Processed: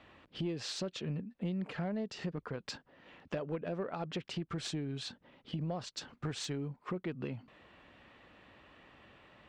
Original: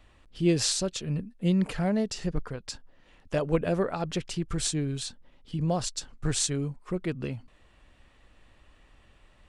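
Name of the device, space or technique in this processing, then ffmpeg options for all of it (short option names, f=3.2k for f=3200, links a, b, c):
AM radio: -af "highpass=140,lowpass=3.4k,acompressor=threshold=-39dB:ratio=6,asoftclip=type=tanh:threshold=-30.5dB,volume=4.5dB"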